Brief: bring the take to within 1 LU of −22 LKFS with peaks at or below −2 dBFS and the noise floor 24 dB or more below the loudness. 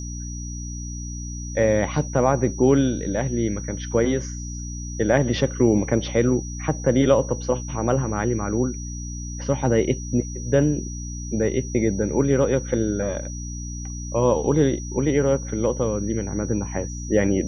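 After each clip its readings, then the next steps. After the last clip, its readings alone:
mains hum 60 Hz; hum harmonics up to 300 Hz; level of the hum −30 dBFS; interfering tone 5,800 Hz; level of the tone −37 dBFS; integrated loudness −23.0 LKFS; sample peak −4.0 dBFS; target loudness −22.0 LKFS
→ hum removal 60 Hz, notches 5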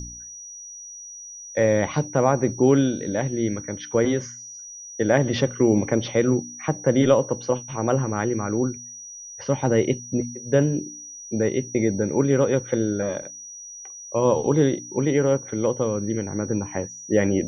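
mains hum none found; interfering tone 5,800 Hz; level of the tone −37 dBFS
→ notch filter 5,800 Hz, Q 30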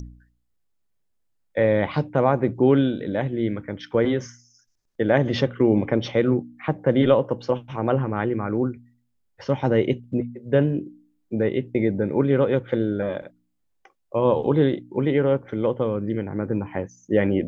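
interfering tone none found; integrated loudness −23.0 LKFS; sample peak −4.0 dBFS; target loudness −22.0 LKFS
→ level +1 dB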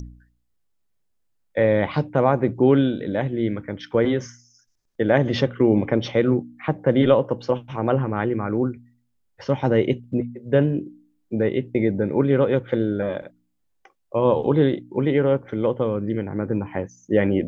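integrated loudness −22.0 LKFS; sample peak −3.0 dBFS; background noise floor −69 dBFS

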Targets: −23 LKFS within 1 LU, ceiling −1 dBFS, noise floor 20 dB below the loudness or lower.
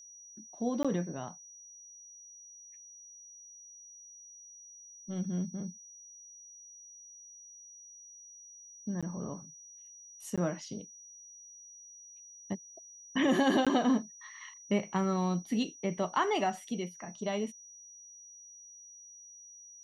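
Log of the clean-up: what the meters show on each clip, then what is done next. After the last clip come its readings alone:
number of dropouts 4; longest dropout 16 ms; interfering tone 5,800 Hz; level of the tone −50 dBFS; integrated loudness −33.5 LKFS; sample peak −16.0 dBFS; target loudness −23.0 LKFS
→ repair the gap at 0:00.83/0:09.01/0:10.36/0:13.65, 16 ms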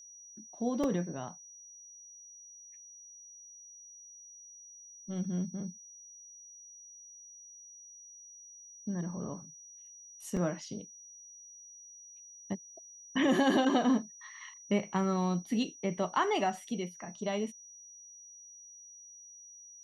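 number of dropouts 0; interfering tone 5,800 Hz; level of the tone −50 dBFS
→ notch filter 5,800 Hz, Q 30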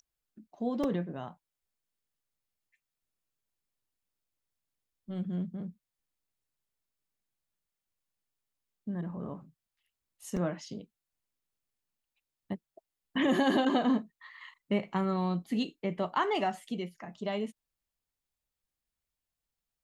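interfering tone none found; integrated loudness −33.0 LKFS; sample peak −16.0 dBFS; target loudness −23.0 LKFS
→ level +10 dB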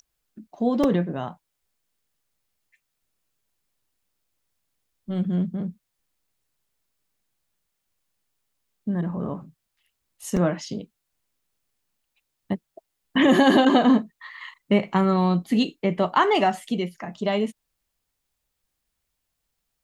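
integrated loudness −23.0 LKFS; sample peak −6.0 dBFS; background noise floor −79 dBFS

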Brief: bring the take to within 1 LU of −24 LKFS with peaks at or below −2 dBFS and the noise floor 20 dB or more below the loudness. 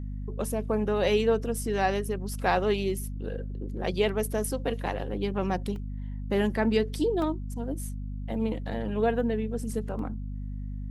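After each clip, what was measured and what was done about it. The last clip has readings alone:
number of dropouts 3; longest dropout 1.8 ms; mains hum 50 Hz; hum harmonics up to 250 Hz; level of the hum −32 dBFS; integrated loudness −29.5 LKFS; sample peak −11.5 dBFS; target loudness −24.0 LKFS
→ repair the gap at 0:05.76/0:07.22/0:09.99, 1.8 ms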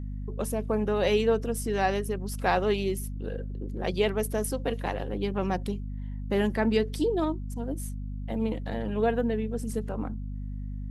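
number of dropouts 0; mains hum 50 Hz; hum harmonics up to 250 Hz; level of the hum −32 dBFS
→ hum removal 50 Hz, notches 5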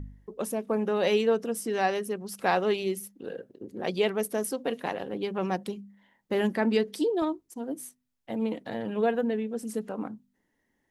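mains hum none found; integrated loudness −29.5 LKFS; sample peak −12.5 dBFS; target loudness −24.0 LKFS
→ level +5.5 dB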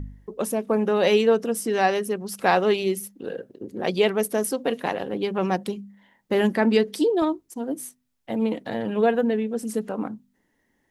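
integrated loudness −24.0 LKFS; sample peak −7.0 dBFS; background noise floor −70 dBFS

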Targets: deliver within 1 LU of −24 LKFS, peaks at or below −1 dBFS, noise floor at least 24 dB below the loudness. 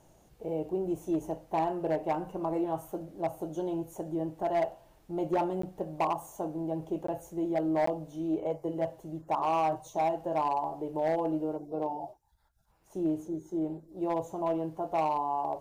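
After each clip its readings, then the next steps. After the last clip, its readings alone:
share of clipped samples 1.0%; peaks flattened at −22.5 dBFS; number of dropouts 3; longest dropout 14 ms; integrated loudness −32.5 LKFS; sample peak −22.5 dBFS; target loudness −24.0 LKFS
→ clipped peaks rebuilt −22.5 dBFS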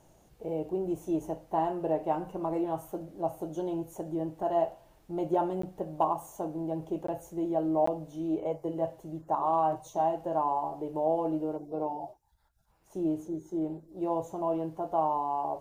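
share of clipped samples 0.0%; number of dropouts 3; longest dropout 14 ms
→ repair the gap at 0:05.62/0:07.07/0:07.86, 14 ms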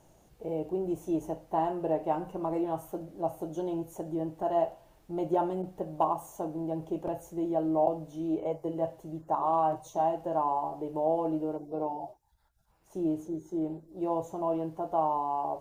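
number of dropouts 0; integrated loudness −32.0 LKFS; sample peak −12.0 dBFS; target loudness −24.0 LKFS
→ level +8 dB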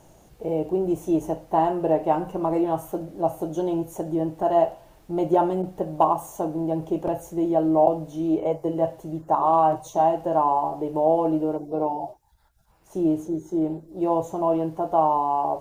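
integrated loudness −24.0 LKFS; sample peak −4.0 dBFS; background noise floor −55 dBFS

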